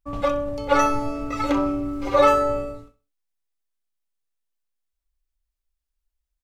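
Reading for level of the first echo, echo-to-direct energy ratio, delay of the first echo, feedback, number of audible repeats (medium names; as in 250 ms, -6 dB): -15.0 dB, -14.5 dB, 64 ms, 28%, 2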